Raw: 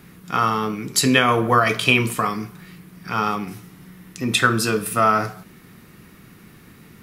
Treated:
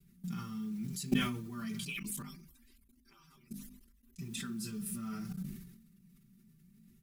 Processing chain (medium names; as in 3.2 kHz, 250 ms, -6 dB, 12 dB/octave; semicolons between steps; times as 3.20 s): 1.83–4.17 s: harmonic-percussive separation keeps percussive; treble shelf 5.8 kHz +2 dB; expander -48 dBFS; FFT filter 220 Hz 0 dB, 570 Hz -29 dB, 7.3 kHz -8 dB; flange 0.71 Hz, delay 1.7 ms, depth 7.7 ms, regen -21%; modulation noise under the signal 27 dB; level held to a coarse grid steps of 23 dB; hum notches 50/100/150/200/250 Hz; comb 5.1 ms, depth 100%; decay stretcher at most 58 dB/s; trim +3 dB